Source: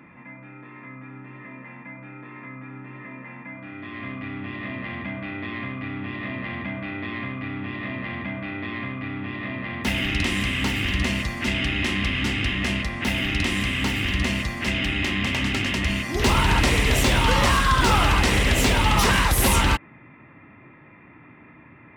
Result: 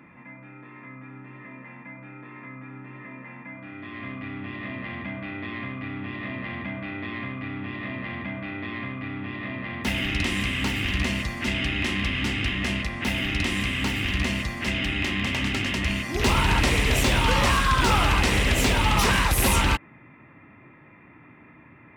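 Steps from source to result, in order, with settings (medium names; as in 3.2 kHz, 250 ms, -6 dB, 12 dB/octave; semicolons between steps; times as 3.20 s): rattle on loud lows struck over -21 dBFS, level -16 dBFS; trim -2 dB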